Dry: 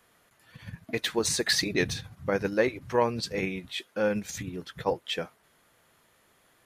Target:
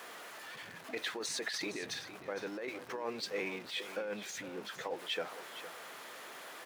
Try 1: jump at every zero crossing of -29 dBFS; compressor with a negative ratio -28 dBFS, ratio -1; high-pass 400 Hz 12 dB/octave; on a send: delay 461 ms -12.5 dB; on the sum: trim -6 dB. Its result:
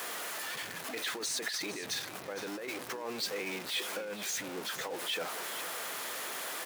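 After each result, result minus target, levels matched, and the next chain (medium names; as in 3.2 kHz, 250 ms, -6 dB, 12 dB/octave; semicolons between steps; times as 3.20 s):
jump at every zero crossing: distortion +6 dB; 8 kHz band +4.0 dB
jump at every zero crossing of -36.5 dBFS; compressor with a negative ratio -28 dBFS, ratio -1; high-pass 400 Hz 12 dB/octave; on a send: delay 461 ms -12.5 dB; on the sum: trim -6 dB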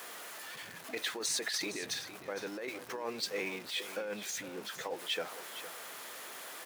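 8 kHz band +4.0 dB
jump at every zero crossing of -36.5 dBFS; compressor with a negative ratio -28 dBFS, ratio -1; high-pass 400 Hz 12 dB/octave; treble shelf 5.7 kHz -10.5 dB; on a send: delay 461 ms -12.5 dB; on the sum: trim -6 dB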